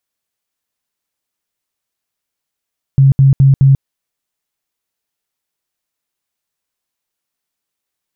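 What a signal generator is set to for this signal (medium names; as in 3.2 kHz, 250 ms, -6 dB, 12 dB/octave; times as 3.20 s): tone bursts 136 Hz, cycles 19, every 0.21 s, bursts 4, -4 dBFS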